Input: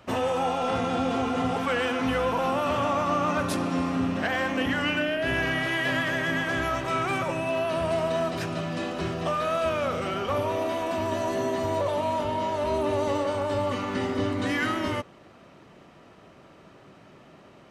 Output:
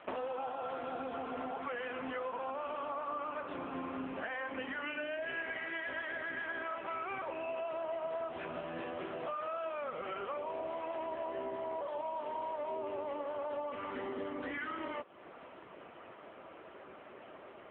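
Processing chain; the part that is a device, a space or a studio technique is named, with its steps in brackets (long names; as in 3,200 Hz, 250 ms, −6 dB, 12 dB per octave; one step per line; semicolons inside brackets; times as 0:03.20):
voicemail (band-pass filter 360–2,900 Hz; downward compressor 6 to 1, threshold −41 dBFS, peak gain reduction 17 dB; level +4.5 dB; AMR narrowband 6.7 kbit/s 8,000 Hz)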